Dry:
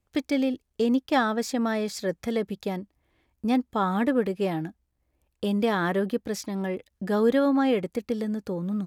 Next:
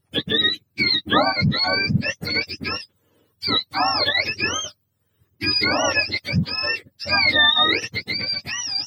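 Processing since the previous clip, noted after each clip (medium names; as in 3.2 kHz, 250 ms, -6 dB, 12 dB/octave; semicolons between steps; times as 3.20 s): spectrum inverted on a logarithmic axis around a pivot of 1 kHz; trim +8.5 dB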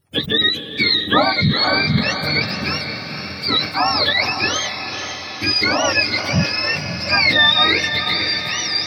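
echo that smears into a reverb 500 ms, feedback 62%, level -8 dB; decay stretcher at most 110 dB/s; trim +2.5 dB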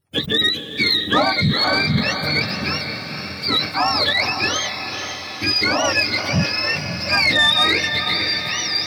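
waveshaping leveller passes 1; trim -4.5 dB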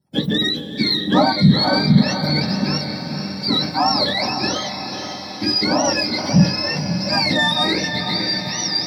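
reverberation RT60 0.20 s, pre-delay 3 ms, DRR 6 dB; trim -9 dB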